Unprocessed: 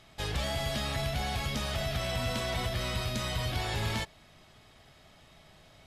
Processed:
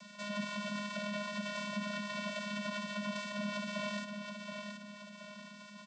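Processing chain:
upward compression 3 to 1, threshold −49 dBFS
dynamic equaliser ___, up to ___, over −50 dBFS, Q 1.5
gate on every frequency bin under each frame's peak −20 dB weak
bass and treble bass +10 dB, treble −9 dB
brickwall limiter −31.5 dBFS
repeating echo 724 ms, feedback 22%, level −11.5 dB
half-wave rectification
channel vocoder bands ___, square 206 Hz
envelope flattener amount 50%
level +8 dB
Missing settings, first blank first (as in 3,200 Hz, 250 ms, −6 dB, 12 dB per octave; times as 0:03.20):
230 Hz, +5 dB, 16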